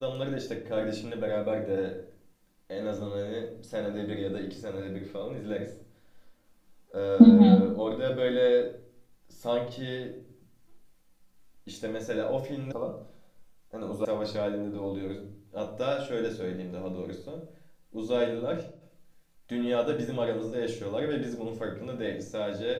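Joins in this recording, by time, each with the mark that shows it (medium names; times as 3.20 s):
12.72 s: sound stops dead
14.05 s: sound stops dead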